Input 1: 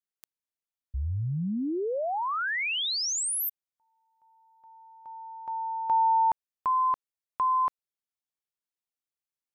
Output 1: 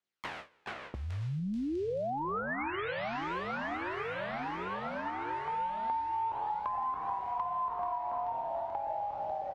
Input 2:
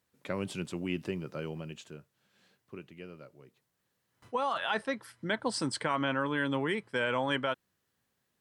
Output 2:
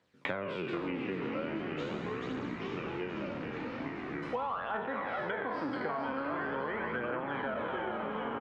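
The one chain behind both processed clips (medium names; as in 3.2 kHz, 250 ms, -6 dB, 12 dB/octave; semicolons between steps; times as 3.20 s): spectral sustain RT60 1.23 s; low-pass that closes with the level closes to 1.6 kHz, closed at -26.5 dBFS; on a send: frequency-shifting echo 434 ms, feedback 53%, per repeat -55 Hz, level -7 dB; on the sum: phaser 0.42 Hz, delay 4.5 ms, feedback 45%; low-pass 4 kHz 12 dB/octave; de-hum 436 Hz, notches 3; gate with hold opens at -53 dBFS, hold 20 ms, range -22 dB; compression 2.5:1, threshold -29 dBFS; ever faster or slower copies 361 ms, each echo -4 st, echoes 3, each echo -6 dB; high-pass 220 Hz 6 dB/octave; three bands compressed up and down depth 100%; trim -3 dB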